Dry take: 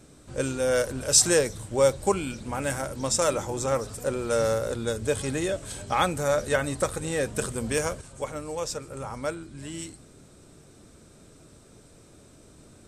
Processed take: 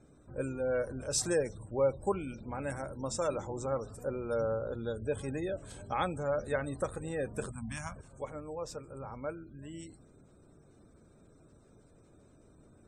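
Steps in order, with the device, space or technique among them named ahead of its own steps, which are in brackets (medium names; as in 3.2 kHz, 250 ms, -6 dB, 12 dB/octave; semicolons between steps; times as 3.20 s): 7.51–7.96 s: Chebyshev band-stop 220–820 Hz, order 2; behind a face mask (treble shelf 2.1 kHz -7.5 dB); spectral gate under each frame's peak -30 dB strong; trim -7 dB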